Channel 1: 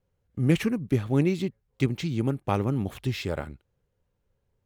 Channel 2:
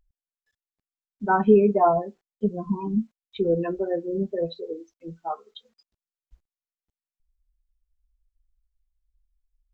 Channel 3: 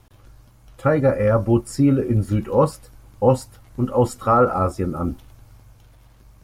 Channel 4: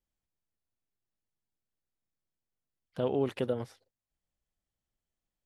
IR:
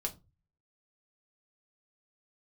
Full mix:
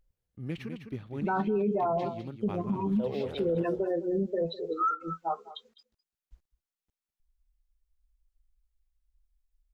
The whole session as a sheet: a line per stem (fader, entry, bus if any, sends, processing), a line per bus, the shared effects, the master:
-14.5 dB, 0.00 s, no send, echo send -7.5 dB, resonant high shelf 5.5 kHz -7.5 dB, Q 1.5
-0.5 dB, 0.00 s, no send, echo send -18 dB, none
-4.0 dB, 0.50 s, no send, no echo send, band-pass filter 1.4 kHz, Q 4.7; spectral contrast expander 2.5:1
-9.5 dB, 0.00 s, no send, echo send -6.5 dB, peaking EQ 510 Hz +9.5 dB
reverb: none
echo: delay 204 ms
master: peak limiter -21 dBFS, peak gain reduction 15 dB

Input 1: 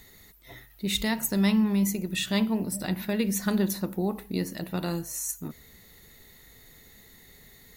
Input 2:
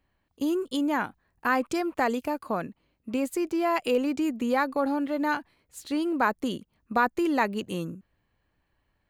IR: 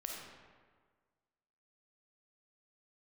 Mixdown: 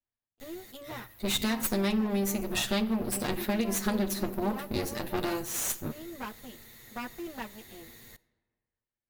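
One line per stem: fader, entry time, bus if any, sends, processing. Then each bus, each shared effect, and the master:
+2.5 dB, 0.40 s, send -16 dB, comb filter that takes the minimum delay 8.5 ms
-13.0 dB, 0.00 s, send -19.5 dB, comb filter that takes the minimum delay 8.6 ms; upward expansion 1.5:1, over -43 dBFS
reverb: on, RT60 1.6 s, pre-delay 10 ms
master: compression 6:1, threshold -25 dBFS, peak gain reduction 9 dB

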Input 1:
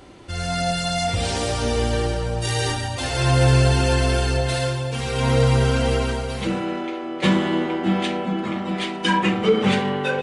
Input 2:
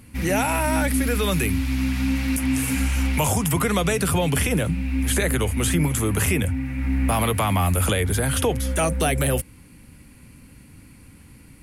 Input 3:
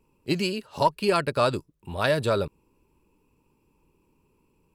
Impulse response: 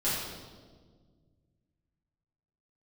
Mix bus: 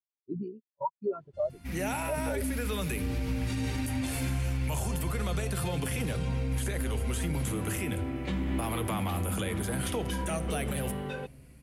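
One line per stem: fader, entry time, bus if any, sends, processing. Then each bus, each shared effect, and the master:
-11.5 dB, 1.05 s, no send, compression, threshold -24 dBFS, peak gain reduction 11.5 dB; bass shelf 200 Hz +11 dB; auto duck -23 dB, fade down 1.30 s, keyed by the third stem
-10.5 dB, 1.50 s, send -22.5 dB, vibrato 0.32 Hz 7.4 cents
-4.5 dB, 0.00 s, no send, cycle switcher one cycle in 3, muted; waveshaping leveller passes 3; spectral contrast expander 4:1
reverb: on, RT60 1.6 s, pre-delay 5 ms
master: peak limiter -22.5 dBFS, peak gain reduction 9 dB

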